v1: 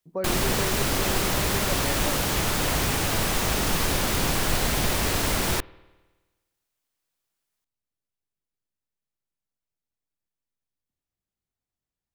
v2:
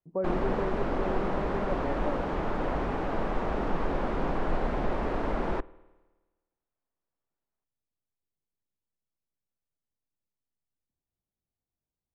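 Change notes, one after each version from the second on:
background: add parametric band 100 Hz −14 dB 1.2 octaves
master: add low-pass filter 1,000 Hz 12 dB per octave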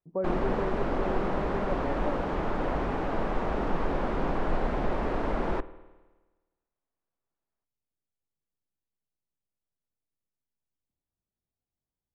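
background: send +6.0 dB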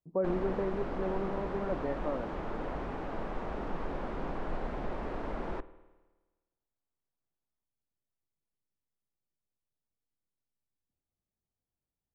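background −8.0 dB

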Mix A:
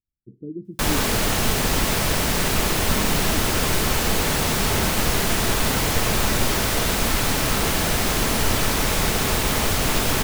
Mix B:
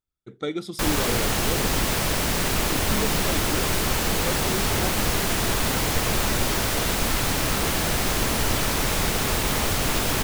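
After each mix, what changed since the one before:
speech: remove inverse Chebyshev low-pass filter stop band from 870 Hz, stop band 50 dB
background: send −10.0 dB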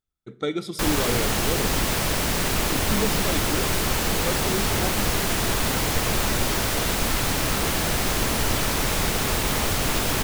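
speech: send on

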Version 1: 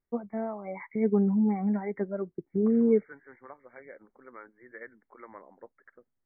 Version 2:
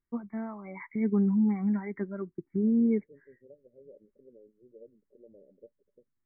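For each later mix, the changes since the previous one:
first voice: add flat-topped bell 590 Hz −10 dB 1.1 octaves
second voice: add Chebyshev low-pass with heavy ripple 600 Hz, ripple 6 dB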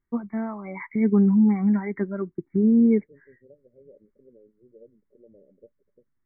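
first voice +7.0 dB
second voice: add low-shelf EQ 180 Hz +8 dB

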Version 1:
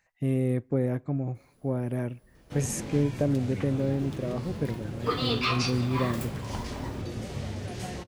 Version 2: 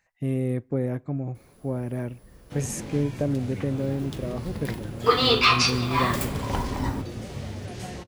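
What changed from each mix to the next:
second sound +9.5 dB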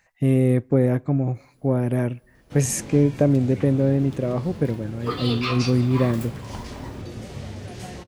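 speech +8.0 dB
second sound −9.5 dB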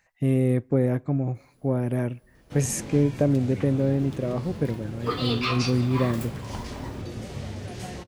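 speech −3.5 dB

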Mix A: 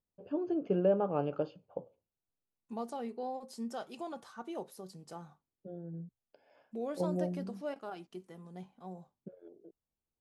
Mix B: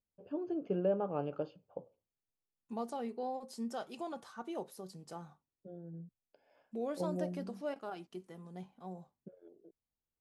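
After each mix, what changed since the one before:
first voice −4.0 dB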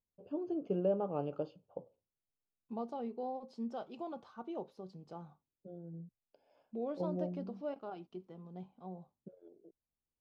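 second voice: add high-frequency loss of the air 240 metres
master: add parametric band 1,800 Hz −10 dB 0.71 octaves

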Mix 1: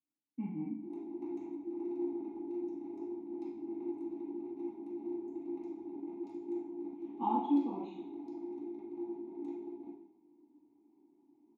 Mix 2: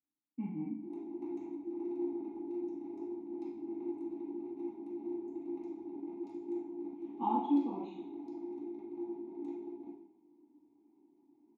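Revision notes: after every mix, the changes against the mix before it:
nothing changed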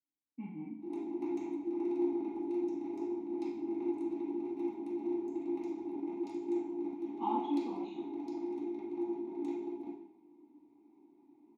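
background +8.5 dB
master: add tilt shelving filter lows −5 dB, about 1,200 Hz

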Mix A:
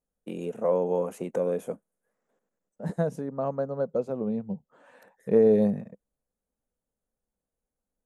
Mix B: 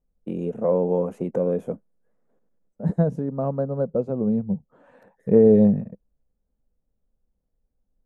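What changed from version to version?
master: add spectral tilt −3.5 dB per octave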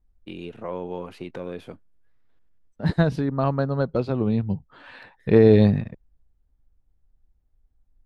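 second voice +10.5 dB
master: remove drawn EQ curve 100 Hz 0 dB, 200 Hz +14 dB, 330 Hz +4 dB, 500 Hz +14 dB, 870 Hz +3 dB, 4,500 Hz −19 dB, 6,600 Hz +3 dB, 10,000 Hz +1 dB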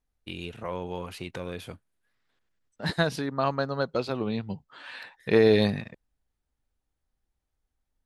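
first voice: remove high-pass filter 260 Hz 12 dB per octave
master: add spectral tilt +3.5 dB per octave

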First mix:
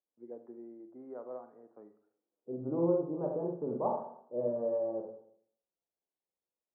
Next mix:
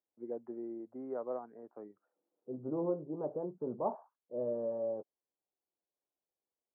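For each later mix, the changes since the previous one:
first voice +6.0 dB
reverb: off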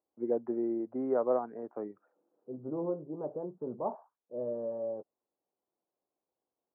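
first voice +10.0 dB

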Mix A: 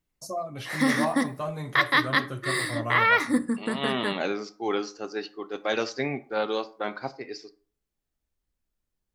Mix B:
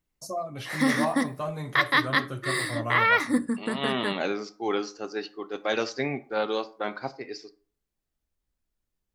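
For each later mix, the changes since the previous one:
background: send off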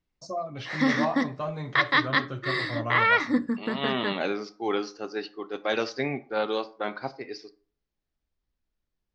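master: add inverse Chebyshev low-pass filter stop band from 10,000 Hz, stop band 40 dB

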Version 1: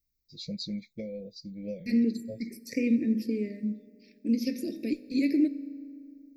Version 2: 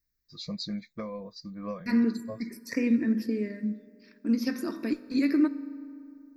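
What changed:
first voice: add parametric band 1,600 Hz +8.5 dB 0.4 octaves
master: remove Chebyshev band-stop filter 560–2,200 Hz, order 3

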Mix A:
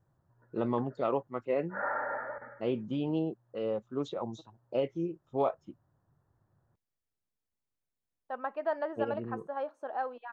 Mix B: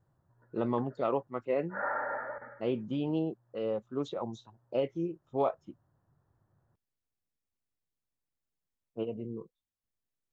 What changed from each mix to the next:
second voice: muted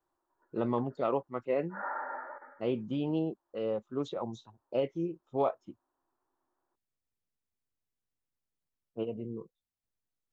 background: add Chebyshev high-pass with heavy ripple 250 Hz, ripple 9 dB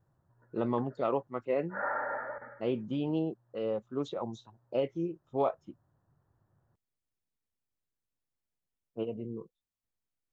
background: remove Chebyshev high-pass with heavy ripple 250 Hz, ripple 9 dB

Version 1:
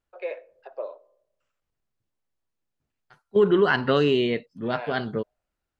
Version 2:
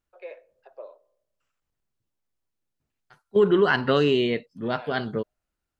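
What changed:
first voice −8.0 dB
master: add high-shelf EQ 8,000 Hz +6 dB

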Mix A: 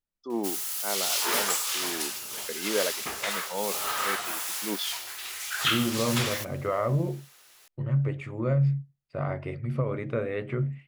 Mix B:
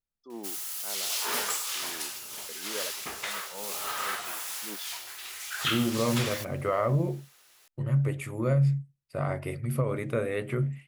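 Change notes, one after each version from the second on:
first voice −11.0 dB
second voice: remove high-frequency loss of the air 160 metres
background −3.5 dB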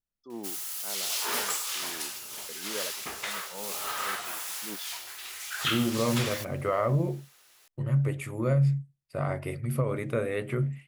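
first voice: add parametric band 100 Hz +13.5 dB 1.1 octaves

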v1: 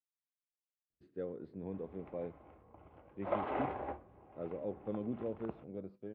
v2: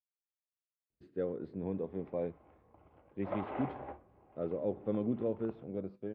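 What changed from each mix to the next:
speech +5.5 dB
background −4.0 dB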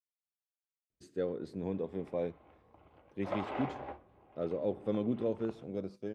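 master: remove high-frequency loss of the air 460 metres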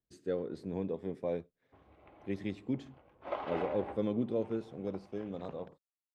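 speech: entry −0.90 s

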